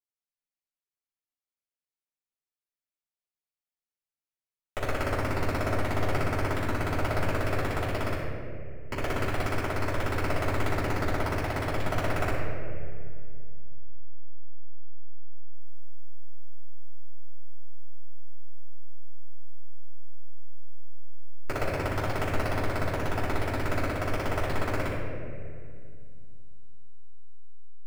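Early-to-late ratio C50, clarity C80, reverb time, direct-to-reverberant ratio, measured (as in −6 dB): −0.5 dB, 1.5 dB, 2.2 s, −10.5 dB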